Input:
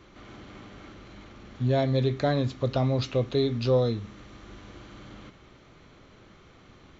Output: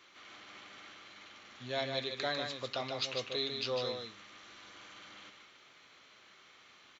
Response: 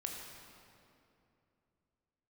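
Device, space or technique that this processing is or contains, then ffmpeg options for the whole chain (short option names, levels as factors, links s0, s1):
filter by subtraction: -filter_complex "[0:a]asplit=2[s0][s1];[s1]lowpass=2700,volume=-1[s2];[s0][s2]amix=inputs=2:normalize=0,aecho=1:1:150:0.531,volume=0.891"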